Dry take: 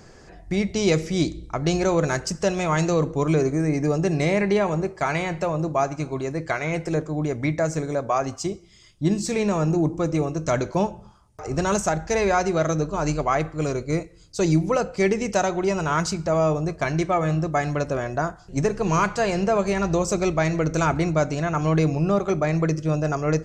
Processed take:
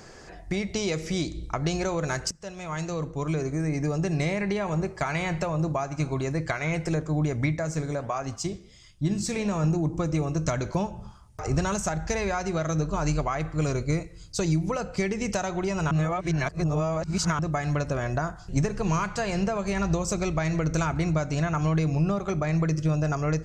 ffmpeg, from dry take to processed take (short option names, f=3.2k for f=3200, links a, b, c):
-filter_complex "[0:a]asettb=1/sr,asplit=3[a][b][c];[a]atrim=end=7.574[d];[b]atrim=start=7.57:end=9.64,asetpts=PTS-STARTPTS,afade=t=in:d=0.004:c=qsin,afade=t=out:st=2.066:d=0.004:c=qsin,flanger=delay=3.9:depth=9.6:regen=-85:speed=1.5:shape=sinusoidal[e];[c]atrim=start=9.636[f];[d][e]acrossfade=d=0.004:c1=hsin:c2=qsin[g];[g][f]acrossfade=d=0.004:c1=qsin:c2=hsin,asplit=4[h][i][j][k];[h]atrim=end=2.31,asetpts=PTS-STARTPTS,afade=t=out:st=2.306:d=0.004:c=hsin:silence=0.0794328[l];[i]atrim=start=2.31:end=15.912,asetpts=PTS-STARTPTS,afade=t=in:d=2.6:silence=0.0794328[m];[j]atrim=start=15.908:end=17.392,asetpts=PTS-STARTPTS,areverse[n];[k]atrim=start=17.388[o];[l][m]concat=n=2:v=0:a=1[p];[p][n]acrossfade=d=0.004:c1=hsin:c2=hsin[q];[q][o]acrossfade=d=0.004:c1=hsin:c2=hsin,lowshelf=f=320:g=-6.5,acompressor=threshold=-28dB:ratio=6,asubboost=boost=3:cutoff=200,volume=3.5dB"